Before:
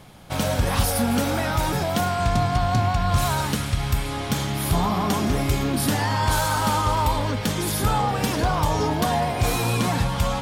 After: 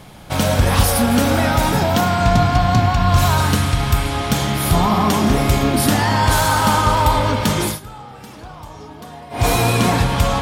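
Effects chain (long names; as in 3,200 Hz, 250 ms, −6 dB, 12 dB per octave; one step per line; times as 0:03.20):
0:01.80–0:03.38: parametric band 9,400 Hz −6.5 dB 0.31 octaves
spring reverb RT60 3.4 s, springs 33 ms, chirp 20 ms, DRR 5.5 dB
0:07.64–0:09.46: duck −20.5 dB, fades 0.16 s
level +6 dB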